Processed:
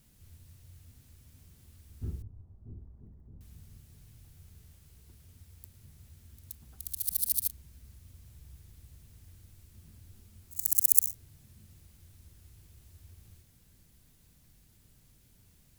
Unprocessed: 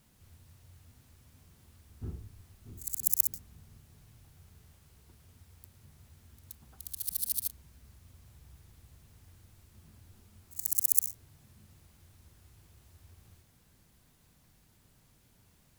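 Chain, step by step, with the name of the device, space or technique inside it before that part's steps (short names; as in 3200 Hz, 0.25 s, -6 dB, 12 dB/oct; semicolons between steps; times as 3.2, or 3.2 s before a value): smiley-face EQ (low shelf 81 Hz +7 dB; bell 940 Hz -6 dB 1.6 oct; high shelf 7300 Hz +4 dB); 2.22–3.41 inverse Chebyshev low-pass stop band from 4200 Hz, stop band 70 dB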